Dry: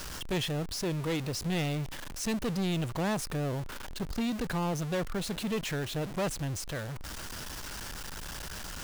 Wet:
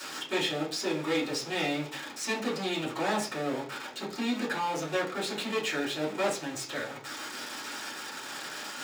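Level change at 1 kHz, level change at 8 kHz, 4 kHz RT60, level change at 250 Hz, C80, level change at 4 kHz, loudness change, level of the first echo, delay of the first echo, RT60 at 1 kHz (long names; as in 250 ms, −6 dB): +5.0 dB, +0.5 dB, 0.50 s, −0.5 dB, 15.0 dB, +4.0 dB, +1.5 dB, no echo audible, no echo audible, 0.40 s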